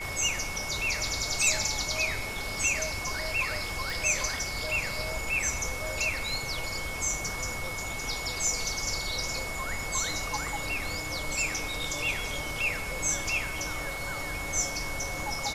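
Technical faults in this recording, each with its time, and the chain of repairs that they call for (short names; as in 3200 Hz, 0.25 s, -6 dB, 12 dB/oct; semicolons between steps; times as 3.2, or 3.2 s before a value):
tone 2200 Hz -36 dBFS
3.9 pop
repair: de-click; notch 2200 Hz, Q 30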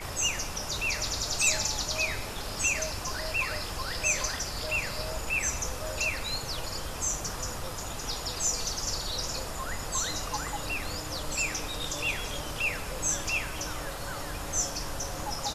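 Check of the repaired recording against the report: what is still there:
none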